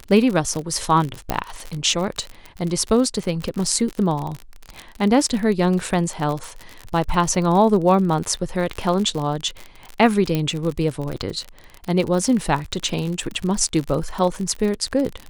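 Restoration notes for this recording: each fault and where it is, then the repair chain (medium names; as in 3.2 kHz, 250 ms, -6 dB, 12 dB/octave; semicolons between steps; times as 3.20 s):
crackle 52 per s -24 dBFS
1.30 s: pop -7 dBFS
10.35 s: pop -9 dBFS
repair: de-click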